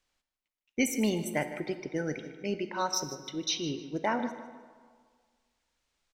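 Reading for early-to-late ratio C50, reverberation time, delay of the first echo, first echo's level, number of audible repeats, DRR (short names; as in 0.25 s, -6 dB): 9.5 dB, 1.7 s, 0.153 s, -15.0 dB, 2, 9.0 dB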